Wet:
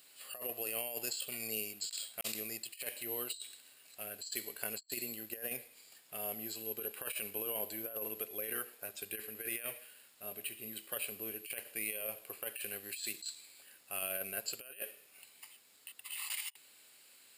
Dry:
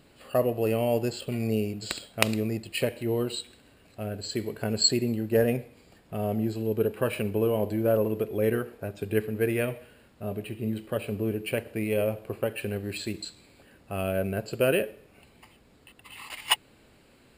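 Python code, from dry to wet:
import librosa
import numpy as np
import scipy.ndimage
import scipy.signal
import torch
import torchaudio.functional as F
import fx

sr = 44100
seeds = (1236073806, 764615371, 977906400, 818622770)

y = np.diff(x, prepend=0.0)
y = fx.over_compress(y, sr, threshold_db=-44.0, ratio=-0.5)
y = F.gain(torch.from_numpy(y), 3.5).numpy()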